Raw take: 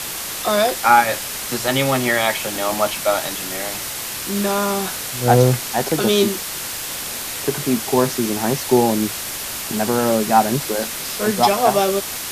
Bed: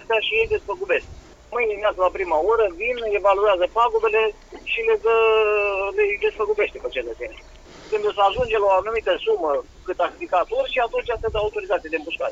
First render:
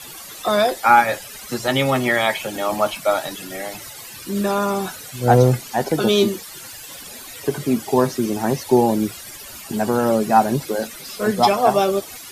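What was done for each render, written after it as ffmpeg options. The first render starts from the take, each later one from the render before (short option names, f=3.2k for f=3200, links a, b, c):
-af "afftdn=nr=15:nf=-28"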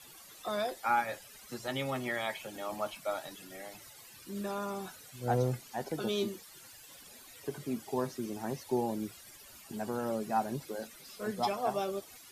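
-af "volume=-16.5dB"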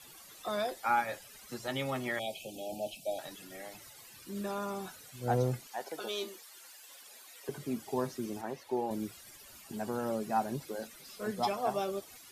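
-filter_complex "[0:a]asettb=1/sr,asplit=3[a][b][c];[a]atrim=end=2.194[d];[b]atrim=start=2.19:end=3.19,asetpts=PTS-STARTPTS,afade=t=in:d=0.004:c=qsin,afade=t=out:st=0.996:d=0.004:c=qsin,asuperstop=centerf=1400:order=20:qfactor=0.87[e];[c]atrim=start=3.186[f];[d][e]acrossfade=d=0.004:c1=hsin:c2=qsin[g];[g][f]acrossfade=d=0.004:c1=qsin:c2=hsin,asettb=1/sr,asplit=3[h][i][j];[h]atrim=end=5.674[k];[i]atrim=start=5.67:end=7.49,asetpts=PTS-STARTPTS,afade=t=in:d=0.004:c=qsin,afade=t=out:st=1.816:d=0.004:c=qsin,highpass=510[l];[j]atrim=start=7.486[m];[k][l]acrossfade=d=0.004:c1=hsin:c2=qsin[n];[n][m]acrossfade=d=0.004:c1=qsin:c2=hsin,asettb=1/sr,asplit=3[o][p][q];[o]atrim=end=8.414[r];[p]atrim=start=8.41:end=8.91,asetpts=PTS-STARTPTS,afade=t=in:d=0.004:c=qsin,afade=t=out:st=0.496:d=0.004:c=qsin,bass=f=250:g=-11,treble=f=4k:g=-9[s];[q]atrim=start=8.906[t];[r][s]acrossfade=d=0.004:c1=hsin:c2=qsin[u];[u][t]acrossfade=d=0.004:c1=qsin:c2=hsin"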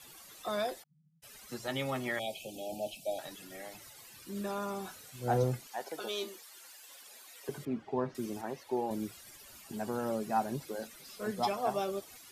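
-filter_complex "[0:a]asplit=3[a][b][c];[a]afade=t=out:st=0.82:d=0.02[d];[b]asuperpass=centerf=160:order=8:qfactor=4.8,afade=t=in:st=0.82:d=0.02,afade=t=out:st=1.22:d=0.02[e];[c]afade=t=in:st=1.22:d=0.02[f];[d][e][f]amix=inputs=3:normalize=0,asettb=1/sr,asplit=3[g][h][i];[g]atrim=end=4.824[j];[h]atrim=start=4.82:end=5.44,asetpts=PTS-STARTPTS,afade=t=in:d=0.004:c=qsin,afade=t=out:st=0.616:d=0.004:c=qsin,asplit=2[k][l];[l]adelay=30,volume=-9dB[m];[k][m]amix=inputs=2:normalize=0,atrim=end_sample=27342[n];[i]atrim=start=5.436[o];[j][n]acrossfade=d=0.004:c1=hsin:c2=qsin[p];[p][o]acrossfade=d=0.004:c1=qsin:c2=hsin,asettb=1/sr,asplit=3[q][r][s];[q]atrim=end=7.654[t];[r]atrim=start=7.65:end=8.15,asetpts=PTS-STARTPTS,afade=t=in:d=0.004:c=qsin,afade=t=out:st=0.496:d=0.004:c=qsin,lowpass=2.2k[u];[s]atrim=start=8.146[v];[t][u]acrossfade=d=0.004:c1=hsin:c2=qsin[w];[w][v]acrossfade=d=0.004:c1=qsin:c2=hsin"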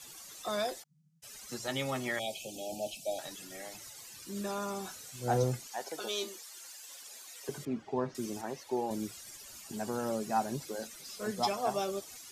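-af "equalizer=f=6.5k:t=o:w=1.1:g=8"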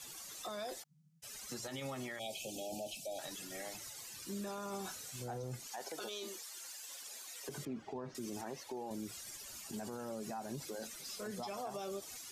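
-af "acompressor=threshold=-34dB:ratio=6,alimiter=level_in=10dB:limit=-24dB:level=0:latency=1:release=45,volume=-10dB"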